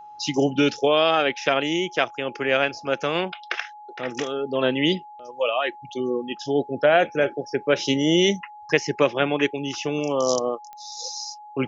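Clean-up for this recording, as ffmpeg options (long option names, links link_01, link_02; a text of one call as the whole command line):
ffmpeg -i in.wav -af "adeclick=threshold=4,bandreject=frequency=840:width=30" out.wav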